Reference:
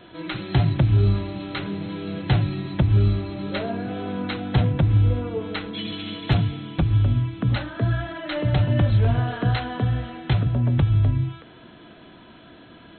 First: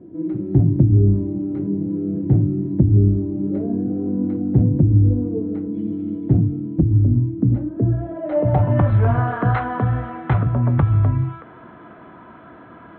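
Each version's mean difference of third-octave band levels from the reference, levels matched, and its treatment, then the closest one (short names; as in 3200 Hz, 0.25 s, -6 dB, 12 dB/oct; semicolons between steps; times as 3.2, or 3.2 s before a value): 6.5 dB: HPF 60 Hz; bell 2100 Hz +5 dB 0.44 oct; low-pass sweep 310 Hz -> 1200 Hz, 7.67–8.9; gain +3 dB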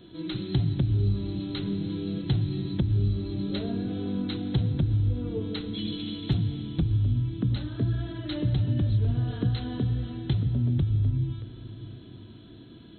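4.5 dB: band shelf 1200 Hz -13.5 dB 2.7 oct; compressor 3:1, threshold -23 dBFS, peak gain reduction 7.5 dB; plate-style reverb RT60 4 s, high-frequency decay 0.75×, pre-delay 80 ms, DRR 12.5 dB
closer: second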